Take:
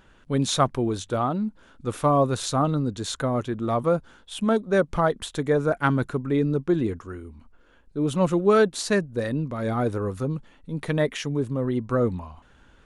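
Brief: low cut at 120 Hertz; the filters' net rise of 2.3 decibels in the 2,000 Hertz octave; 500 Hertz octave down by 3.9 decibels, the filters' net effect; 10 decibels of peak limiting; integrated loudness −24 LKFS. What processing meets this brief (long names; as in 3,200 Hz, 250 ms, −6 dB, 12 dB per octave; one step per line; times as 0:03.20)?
high-pass filter 120 Hz
parametric band 500 Hz −5 dB
parametric band 2,000 Hz +3.5 dB
level +4 dB
brickwall limiter −12 dBFS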